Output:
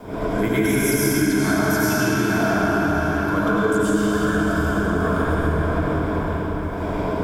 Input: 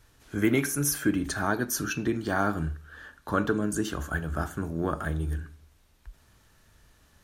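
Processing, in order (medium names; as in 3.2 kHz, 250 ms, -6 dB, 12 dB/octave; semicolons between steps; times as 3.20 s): wind noise 530 Hz -40 dBFS; peaking EQ 1 kHz +2.5 dB 0.23 oct; in parallel at -5 dB: one-sided clip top -24 dBFS; on the sum: gate with hold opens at -40 dBFS; rippled EQ curve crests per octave 1.7, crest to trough 8 dB; on a send: echo that smears into a reverb 487 ms, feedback 46%, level -13 dB; on the sum: algorithmic reverb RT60 4.9 s, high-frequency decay 0.75×, pre-delay 60 ms, DRR -10 dB; compression 2.5:1, threshold -19 dBFS, peak gain reduction 9 dB; bit crusher 10-bit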